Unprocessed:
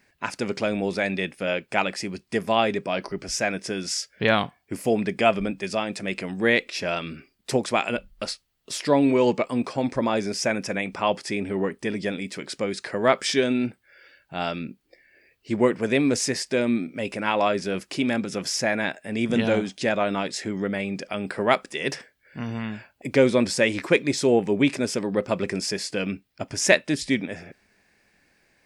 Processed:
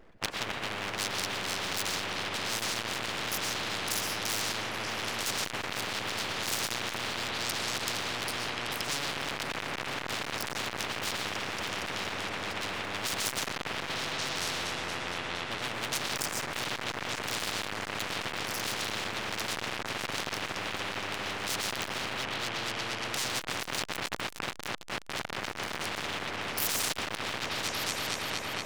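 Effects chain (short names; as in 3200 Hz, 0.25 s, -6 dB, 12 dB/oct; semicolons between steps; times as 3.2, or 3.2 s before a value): Wiener smoothing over 41 samples; dynamic EQ 4700 Hz, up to -4 dB, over -43 dBFS, Q 1.1; chopper 1.4 Hz, depth 60%, duty 80%; reverb RT60 0.70 s, pre-delay 80 ms, DRR 5 dB; in parallel at -1 dB: compressor 12:1, threshold -45 dBFS, peak gain reduction 32.5 dB; on the sum: full-wave rectifier; on a send: repeats that get brighter 0.233 s, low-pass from 750 Hz, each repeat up 1 oct, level 0 dB; on the sum: hard clip -17.5 dBFS, distortion -10 dB; spectral compressor 10:1; gain +5.5 dB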